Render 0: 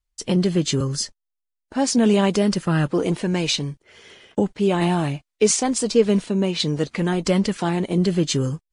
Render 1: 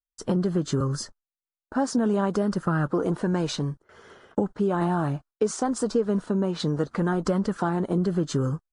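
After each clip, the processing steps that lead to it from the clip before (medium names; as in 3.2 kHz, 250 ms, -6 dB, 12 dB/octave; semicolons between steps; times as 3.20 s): gate with hold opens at -41 dBFS; resonant high shelf 1.8 kHz -8.5 dB, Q 3; compression 4:1, threshold -21 dBFS, peak gain reduction 9.5 dB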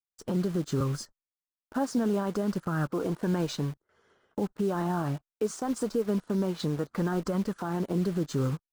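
in parallel at -3 dB: word length cut 6-bit, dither none; on the sum: peak limiter -13.5 dBFS, peak gain reduction 6 dB; upward expansion 1.5:1, over -39 dBFS; trim -5.5 dB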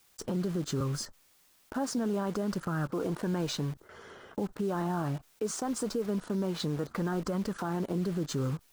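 level flattener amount 50%; trim -5 dB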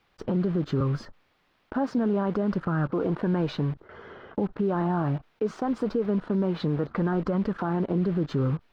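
distance through air 360 m; trim +6.5 dB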